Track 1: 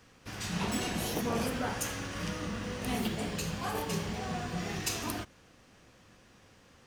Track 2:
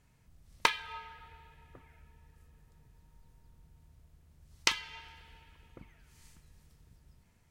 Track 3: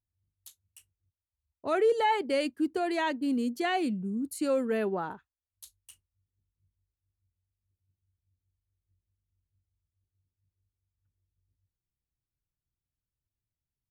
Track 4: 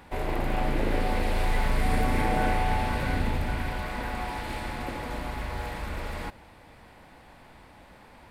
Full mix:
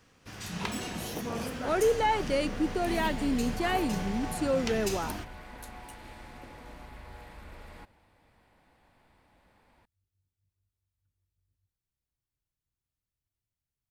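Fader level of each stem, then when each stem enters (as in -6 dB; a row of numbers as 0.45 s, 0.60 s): -3.0 dB, -10.5 dB, -0.5 dB, -13.5 dB; 0.00 s, 0.00 s, 0.00 s, 1.55 s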